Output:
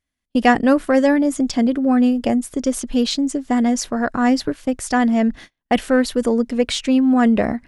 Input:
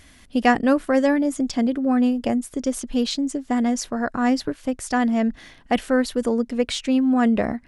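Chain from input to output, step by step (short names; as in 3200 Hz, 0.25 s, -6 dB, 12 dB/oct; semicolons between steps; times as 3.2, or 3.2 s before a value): gate -38 dBFS, range -36 dB; in parallel at -8.5 dB: soft clip -15 dBFS, distortion -15 dB; on the sum: gain +1.5 dB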